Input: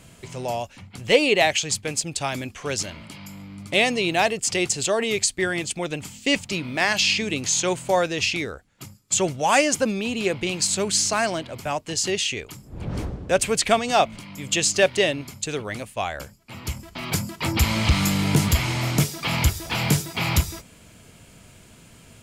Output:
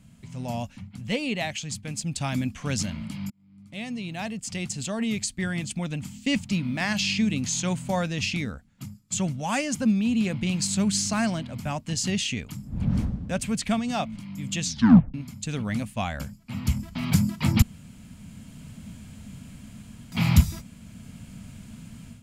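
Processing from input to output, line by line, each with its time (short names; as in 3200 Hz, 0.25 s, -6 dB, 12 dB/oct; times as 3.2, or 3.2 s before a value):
3.3–6.67 fade in
14.62 tape stop 0.52 s
17.62–20.12 room tone
whole clip: AGC gain up to 11 dB; resonant low shelf 290 Hz +8 dB, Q 3; gain -13 dB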